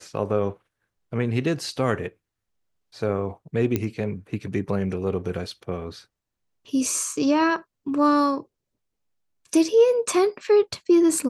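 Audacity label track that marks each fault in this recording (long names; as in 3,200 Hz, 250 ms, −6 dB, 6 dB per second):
3.760000	3.760000	click −10 dBFS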